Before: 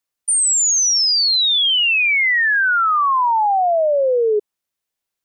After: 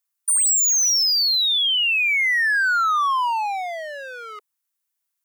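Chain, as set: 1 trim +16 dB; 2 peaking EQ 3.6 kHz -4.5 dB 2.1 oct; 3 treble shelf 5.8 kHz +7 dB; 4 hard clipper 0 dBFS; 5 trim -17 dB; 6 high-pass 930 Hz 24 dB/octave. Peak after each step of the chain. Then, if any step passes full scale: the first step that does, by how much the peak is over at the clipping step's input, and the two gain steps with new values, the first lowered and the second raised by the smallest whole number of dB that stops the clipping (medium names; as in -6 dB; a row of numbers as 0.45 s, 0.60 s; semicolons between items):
+3.0 dBFS, +3.0 dBFS, +7.0 dBFS, 0.0 dBFS, -17.0 dBFS, -14.5 dBFS; step 1, 7.0 dB; step 1 +9 dB, step 5 -10 dB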